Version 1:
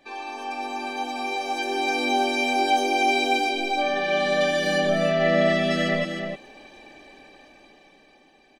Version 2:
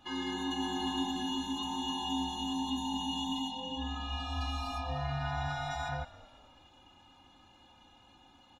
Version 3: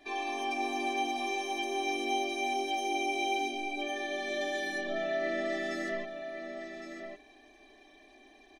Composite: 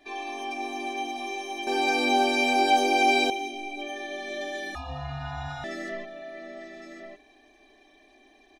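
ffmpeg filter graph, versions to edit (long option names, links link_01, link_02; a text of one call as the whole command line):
ffmpeg -i take0.wav -i take1.wav -i take2.wav -filter_complex "[2:a]asplit=3[link_01][link_02][link_03];[link_01]atrim=end=1.672[link_04];[0:a]atrim=start=1.668:end=3.302[link_05];[link_02]atrim=start=3.298:end=4.752[link_06];[1:a]atrim=start=4.748:end=5.642[link_07];[link_03]atrim=start=5.638[link_08];[link_04][link_05]acrossfade=duration=0.004:curve1=hsin:curve2=hsin[link_09];[link_09][link_06]acrossfade=duration=0.004:curve1=hsin:curve2=hsin[link_10];[link_10][link_07]acrossfade=duration=0.004:curve1=hsin:curve2=hsin[link_11];[link_11][link_08]acrossfade=duration=0.004:curve1=hsin:curve2=hsin" out.wav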